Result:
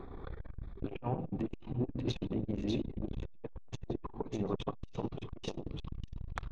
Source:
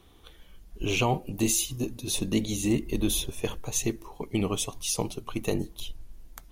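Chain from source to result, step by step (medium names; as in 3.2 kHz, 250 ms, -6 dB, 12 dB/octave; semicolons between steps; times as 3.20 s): local Wiener filter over 15 samples; low-pass that closes with the level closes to 1.1 kHz, closed at -23 dBFS; low-pass 3.1 kHz 12 dB/octave; peaking EQ 76 Hz -5 dB 0.92 oct; peak limiter -25.5 dBFS, peak gain reduction 11.5 dB; reverse; compression 6:1, threshold -45 dBFS, peak gain reduction 15 dB; reverse; wow and flutter 17 cents; feedback echo behind a high-pass 594 ms, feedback 44%, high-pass 1.7 kHz, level -3.5 dB; on a send at -12 dB: reverberation RT60 1.1 s, pre-delay 3 ms; on the sum: transformer saturation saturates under 320 Hz; trim +14.5 dB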